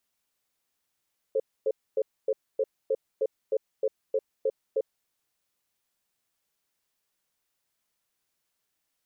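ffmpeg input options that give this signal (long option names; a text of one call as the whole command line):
ffmpeg -f lavfi -i "aevalsrc='0.0562*(sin(2*PI*439*t)+sin(2*PI*532*t))*clip(min(mod(t,0.31),0.05-mod(t,0.31))/0.005,0,1)':duration=3.56:sample_rate=44100" out.wav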